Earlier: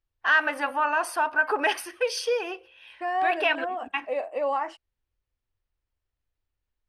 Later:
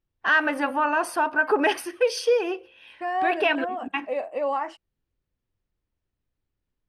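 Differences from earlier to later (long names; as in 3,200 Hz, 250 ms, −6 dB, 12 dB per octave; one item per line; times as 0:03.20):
first voice: add parametric band 330 Hz +7 dB 1.4 octaves
master: add parametric band 170 Hz +11.5 dB 0.94 octaves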